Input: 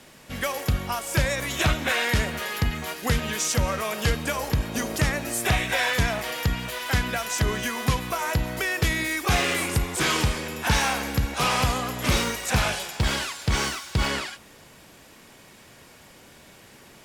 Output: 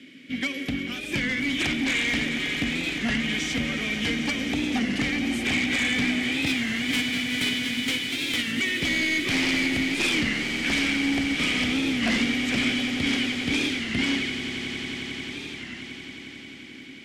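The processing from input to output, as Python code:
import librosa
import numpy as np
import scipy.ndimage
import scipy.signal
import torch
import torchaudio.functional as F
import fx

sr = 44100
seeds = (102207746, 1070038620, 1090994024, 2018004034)

y = fx.envelope_flatten(x, sr, power=0.1, at=(6.47, 8.51), fade=0.02)
y = fx.vowel_filter(y, sr, vowel='i')
y = fx.fold_sine(y, sr, drive_db=11, ceiling_db=-21.5)
y = fx.echo_swell(y, sr, ms=89, loudest=8, wet_db=-14.0)
y = fx.record_warp(y, sr, rpm=33.33, depth_cents=160.0)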